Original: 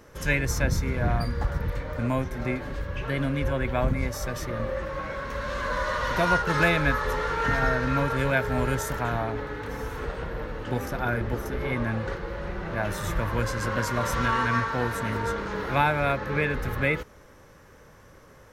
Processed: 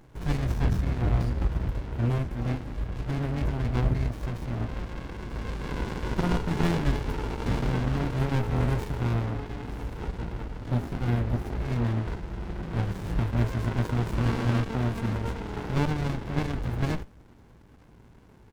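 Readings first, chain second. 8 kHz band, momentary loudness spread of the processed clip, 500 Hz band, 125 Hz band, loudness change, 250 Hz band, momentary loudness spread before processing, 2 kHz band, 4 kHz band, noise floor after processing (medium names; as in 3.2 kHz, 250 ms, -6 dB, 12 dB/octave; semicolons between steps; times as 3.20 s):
-10.5 dB, 9 LU, -6.5 dB, +3.0 dB, -2.0 dB, +0.5 dB, 10 LU, -12.0 dB, -5.0 dB, -53 dBFS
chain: doubling 17 ms -7 dB; sliding maximum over 65 samples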